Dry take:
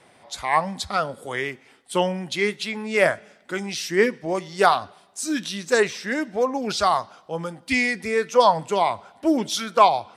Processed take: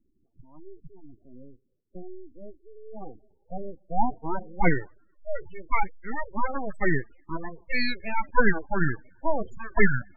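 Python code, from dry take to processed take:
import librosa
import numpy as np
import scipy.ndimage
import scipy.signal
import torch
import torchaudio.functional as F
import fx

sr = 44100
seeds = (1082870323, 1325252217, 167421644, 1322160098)

y = fx.filter_sweep_lowpass(x, sr, from_hz=130.0, to_hz=2700.0, start_s=2.79, end_s=5.0, q=0.85)
y = np.abs(y)
y = fx.spec_gate(y, sr, threshold_db=-20, keep='strong')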